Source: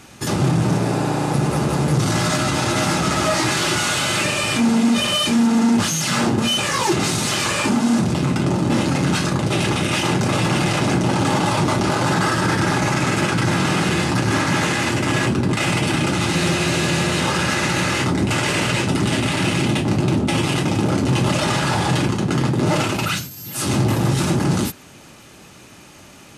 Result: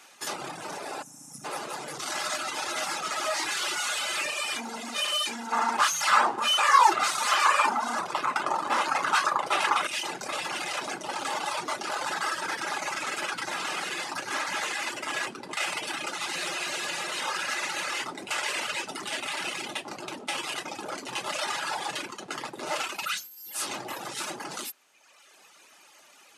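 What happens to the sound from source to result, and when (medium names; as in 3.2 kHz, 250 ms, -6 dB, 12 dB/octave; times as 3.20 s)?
1.03–1.44 s: time-frequency box 280–5200 Hz -17 dB
5.52–9.87 s: peaking EQ 1.1 kHz +14.5 dB 1.4 oct
whole clip: reverb removal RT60 1.2 s; high-pass 660 Hz 12 dB/octave; trim -6 dB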